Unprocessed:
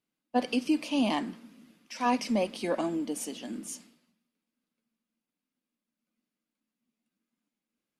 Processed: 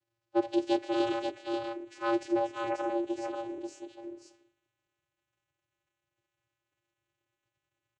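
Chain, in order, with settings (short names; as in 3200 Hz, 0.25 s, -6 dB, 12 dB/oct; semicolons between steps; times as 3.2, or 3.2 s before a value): frequency shift +130 Hz; crackle 400/s -61 dBFS; formant-preserving pitch shift -6 st; vocoder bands 8, square 115 Hz; echo 0.535 s -4.5 dB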